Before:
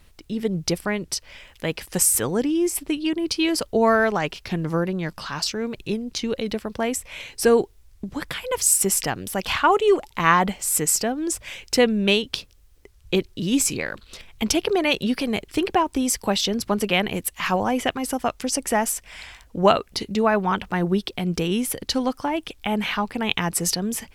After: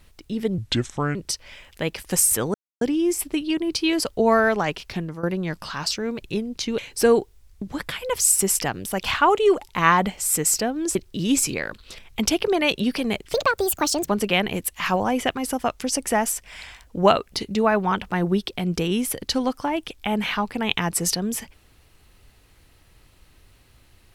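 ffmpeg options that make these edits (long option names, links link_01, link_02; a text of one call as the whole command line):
ffmpeg -i in.wav -filter_complex "[0:a]asplit=9[link_01][link_02][link_03][link_04][link_05][link_06][link_07][link_08][link_09];[link_01]atrim=end=0.584[link_10];[link_02]atrim=start=0.58:end=0.98,asetpts=PTS-STARTPTS,asetrate=30870,aresample=44100[link_11];[link_03]atrim=start=0.976:end=2.37,asetpts=PTS-STARTPTS,afade=type=out:start_time=1.39:duration=0.004:curve=hsin,apad=pad_dur=0.27[link_12];[link_04]atrim=start=2.37:end=4.79,asetpts=PTS-STARTPTS,afade=type=in:duration=0.004:curve=hsin,afade=type=out:start_time=2.08:duration=0.34:silence=0.16788[link_13];[link_05]atrim=start=4.79:end=6.342,asetpts=PTS-STARTPTS,afade=type=in:duration=0.004:curve=hsin:silence=0.16788[link_14];[link_06]atrim=start=7.198:end=11.372[link_15];[link_07]atrim=start=13.178:end=15.564[link_16];[link_08]atrim=start=15.56:end=16.69,asetpts=PTS-STARTPTS,asetrate=65709,aresample=44100[link_17];[link_09]atrim=start=16.686[link_18];[link_10][link_11]acrossfade=duration=0.004:curve1=hsin:curve2=hsin[link_19];[link_12][link_13][link_14]concat=n=3:v=0:a=1[link_20];[link_19][link_20]acrossfade=duration=0.004:curve1=hsin:curve2=hsin[link_21];[link_21][link_15]acrossfade=duration=0.004:curve1=hsin:curve2=hsin[link_22];[link_22][link_16]acrossfade=duration=0.004:curve1=hsin:curve2=hsin[link_23];[link_23][link_17]acrossfade=duration=0.004:curve1=hsin:curve2=hsin[link_24];[link_24][link_18]acrossfade=duration=0.004:curve1=hsin:curve2=hsin" out.wav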